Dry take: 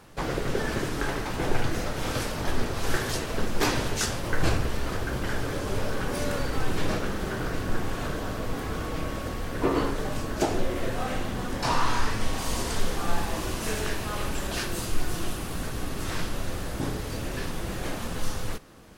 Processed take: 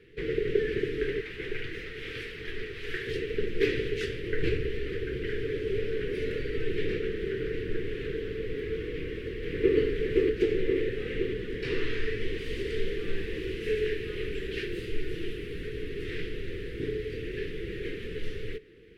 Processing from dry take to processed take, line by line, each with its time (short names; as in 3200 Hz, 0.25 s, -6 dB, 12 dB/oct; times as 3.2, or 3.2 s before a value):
1.2–3.07 resonant low shelf 640 Hz -7 dB, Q 1.5
8.9–9.77 echo throw 0.52 s, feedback 65%, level -1 dB
whole clip: EQ curve 140 Hz 0 dB, 250 Hz -4 dB, 440 Hz +15 dB, 630 Hz -25 dB, 950 Hz -29 dB, 1900 Hz +7 dB, 3100 Hz +3 dB, 6500 Hz -18 dB; gain -6 dB